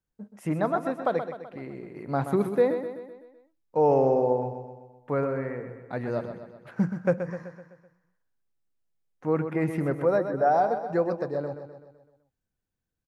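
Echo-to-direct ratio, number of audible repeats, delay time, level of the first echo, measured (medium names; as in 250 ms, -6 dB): -7.5 dB, 5, 127 ms, -9.0 dB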